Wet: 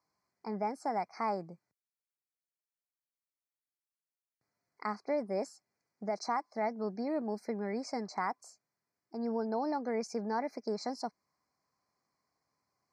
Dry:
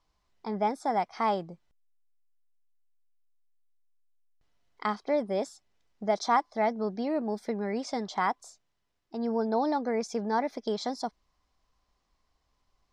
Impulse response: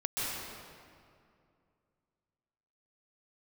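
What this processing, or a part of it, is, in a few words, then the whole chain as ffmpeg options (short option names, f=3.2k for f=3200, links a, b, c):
PA system with an anti-feedback notch: -af "highpass=f=110:w=0.5412,highpass=f=110:w=1.3066,asuperstop=centerf=3200:order=20:qfactor=2,alimiter=limit=-19dB:level=0:latency=1:release=203,volume=-4.5dB"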